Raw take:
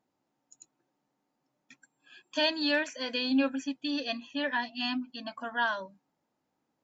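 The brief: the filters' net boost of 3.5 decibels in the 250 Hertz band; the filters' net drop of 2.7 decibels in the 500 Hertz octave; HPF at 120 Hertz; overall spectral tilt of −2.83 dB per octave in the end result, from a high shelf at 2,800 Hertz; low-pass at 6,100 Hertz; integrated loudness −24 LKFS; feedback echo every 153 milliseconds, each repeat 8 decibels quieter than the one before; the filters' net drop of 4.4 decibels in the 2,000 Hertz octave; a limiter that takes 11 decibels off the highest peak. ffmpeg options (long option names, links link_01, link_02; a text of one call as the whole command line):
ffmpeg -i in.wav -af "highpass=120,lowpass=6100,equalizer=frequency=250:width_type=o:gain=5,equalizer=frequency=500:width_type=o:gain=-4,equalizer=frequency=2000:width_type=o:gain=-7.5,highshelf=frequency=2800:gain=4.5,alimiter=level_in=2dB:limit=-24dB:level=0:latency=1,volume=-2dB,aecho=1:1:153|306|459|612|765:0.398|0.159|0.0637|0.0255|0.0102,volume=10.5dB" out.wav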